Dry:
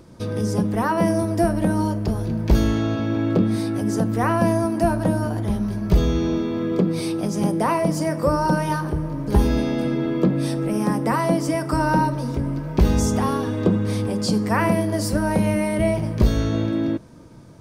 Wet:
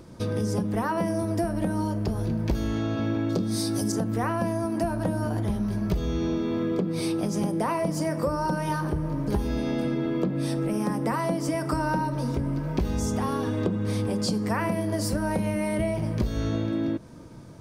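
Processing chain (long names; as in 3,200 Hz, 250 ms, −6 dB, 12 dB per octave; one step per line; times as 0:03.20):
0:03.29–0:03.92: high shelf with overshoot 3,600 Hz +11.5 dB, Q 1.5
downward compressor, threshold −23 dBFS, peak gain reduction 12 dB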